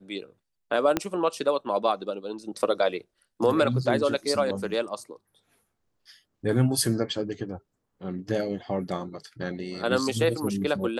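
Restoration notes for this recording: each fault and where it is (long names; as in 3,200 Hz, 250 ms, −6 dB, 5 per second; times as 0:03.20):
0:00.97: click −9 dBFS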